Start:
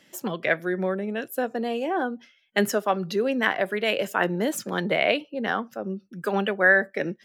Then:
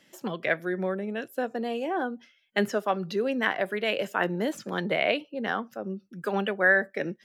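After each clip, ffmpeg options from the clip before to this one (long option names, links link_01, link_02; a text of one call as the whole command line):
ffmpeg -i in.wav -filter_complex "[0:a]acrossover=split=5500[link_01][link_02];[link_02]acompressor=threshold=-46dB:ratio=4:attack=1:release=60[link_03];[link_01][link_03]amix=inputs=2:normalize=0,volume=-3dB" out.wav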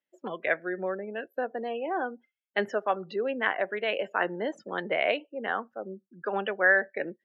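ffmpeg -i in.wav -af "afftdn=noise_reduction=28:noise_floor=-42,bass=frequency=250:gain=-14,treble=frequency=4000:gain=-12" out.wav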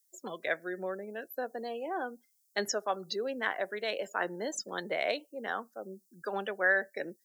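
ffmpeg -i in.wav -af "aexciter=amount=13:drive=8.5:freq=4400,volume=-5dB" out.wav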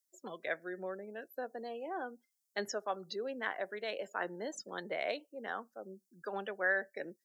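ffmpeg -i in.wav -af "highshelf=frequency=5900:gain=-8,volume=-4.5dB" out.wav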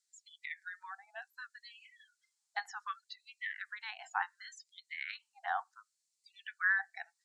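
ffmpeg -i in.wav -filter_complex "[0:a]acrossover=split=2500[link_01][link_02];[link_02]acompressor=threshold=-58dB:ratio=4:attack=1:release=60[link_03];[link_01][link_03]amix=inputs=2:normalize=0,highpass=310,equalizer=frequency=400:width_type=q:width=4:gain=-8,equalizer=frequency=770:width_type=q:width=4:gain=6,equalizer=frequency=4200:width_type=q:width=4:gain=6,equalizer=frequency=7400:width_type=q:width=4:gain=4,lowpass=frequency=8700:width=0.5412,lowpass=frequency=8700:width=1.3066,afftfilt=real='re*gte(b*sr/1024,660*pow(2000/660,0.5+0.5*sin(2*PI*0.68*pts/sr)))':imag='im*gte(b*sr/1024,660*pow(2000/660,0.5+0.5*sin(2*PI*0.68*pts/sr)))':win_size=1024:overlap=0.75,volume=3.5dB" out.wav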